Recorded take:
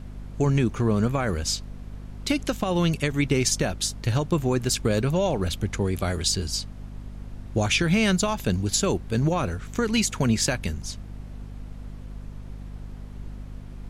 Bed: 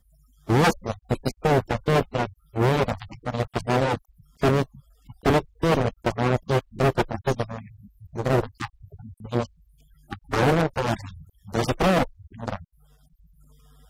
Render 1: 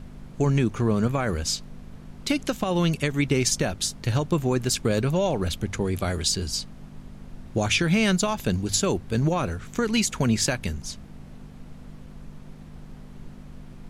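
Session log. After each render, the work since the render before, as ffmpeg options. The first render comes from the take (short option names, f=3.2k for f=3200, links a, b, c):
-af "bandreject=f=50:t=h:w=6,bandreject=f=100:t=h:w=6"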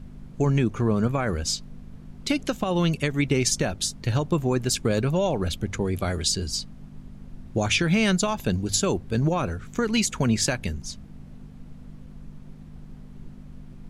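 -af "afftdn=nr=6:nf=-43"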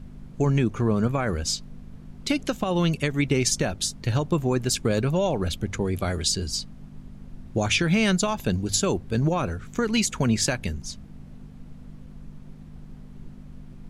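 -af anull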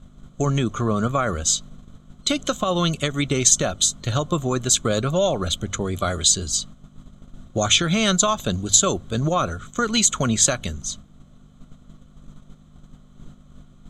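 -af "agate=range=-7dB:threshold=-39dB:ratio=16:detection=peak,superequalizer=8b=1.78:10b=2.82:13b=3.16:15b=3.55"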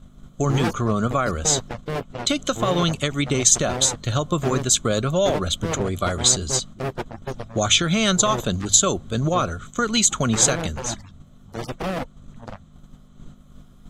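-filter_complex "[1:a]volume=-7dB[a];[0:a][a]amix=inputs=2:normalize=0"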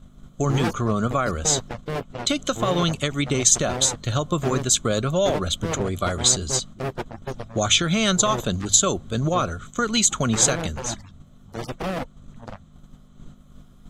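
-af "volume=-1dB,alimiter=limit=-3dB:level=0:latency=1"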